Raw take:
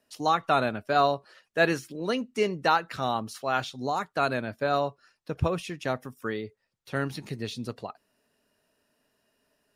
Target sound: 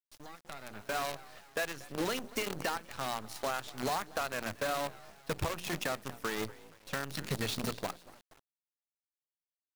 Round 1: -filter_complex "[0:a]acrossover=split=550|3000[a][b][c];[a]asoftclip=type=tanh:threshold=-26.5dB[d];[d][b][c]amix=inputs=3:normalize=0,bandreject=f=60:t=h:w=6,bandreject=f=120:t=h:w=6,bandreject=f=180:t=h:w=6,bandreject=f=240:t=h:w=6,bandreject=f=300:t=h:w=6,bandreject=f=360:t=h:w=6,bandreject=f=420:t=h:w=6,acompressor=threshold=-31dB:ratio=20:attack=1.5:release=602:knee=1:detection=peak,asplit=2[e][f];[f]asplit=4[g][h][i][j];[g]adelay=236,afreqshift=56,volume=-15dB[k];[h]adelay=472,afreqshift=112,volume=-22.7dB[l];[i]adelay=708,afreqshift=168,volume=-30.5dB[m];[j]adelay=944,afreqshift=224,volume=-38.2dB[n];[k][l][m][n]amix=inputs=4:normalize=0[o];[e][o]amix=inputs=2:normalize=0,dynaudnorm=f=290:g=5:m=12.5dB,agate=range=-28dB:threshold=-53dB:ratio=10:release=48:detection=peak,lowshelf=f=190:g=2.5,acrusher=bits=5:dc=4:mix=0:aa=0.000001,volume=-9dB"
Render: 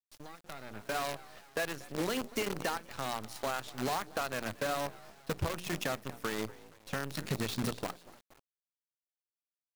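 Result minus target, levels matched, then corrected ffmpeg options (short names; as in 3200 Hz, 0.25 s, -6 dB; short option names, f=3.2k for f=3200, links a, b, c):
soft clip: distortion -6 dB
-filter_complex "[0:a]acrossover=split=550|3000[a][b][c];[a]asoftclip=type=tanh:threshold=-34.5dB[d];[d][b][c]amix=inputs=3:normalize=0,bandreject=f=60:t=h:w=6,bandreject=f=120:t=h:w=6,bandreject=f=180:t=h:w=6,bandreject=f=240:t=h:w=6,bandreject=f=300:t=h:w=6,bandreject=f=360:t=h:w=6,bandreject=f=420:t=h:w=6,acompressor=threshold=-31dB:ratio=20:attack=1.5:release=602:knee=1:detection=peak,asplit=2[e][f];[f]asplit=4[g][h][i][j];[g]adelay=236,afreqshift=56,volume=-15dB[k];[h]adelay=472,afreqshift=112,volume=-22.7dB[l];[i]adelay=708,afreqshift=168,volume=-30.5dB[m];[j]adelay=944,afreqshift=224,volume=-38.2dB[n];[k][l][m][n]amix=inputs=4:normalize=0[o];[e][o]amix=inputs=2:normalize=0,dynaudnorm=f=290:g=5:m=12.5dB,agate=range=-28dB:threshold=-53dB:ratio=10:release=48:detection=peak,lowshelf=f=190:g=2.5,acrusher=bits=5:dc=4:mix=0:aa=0.000001,volume=-9dB"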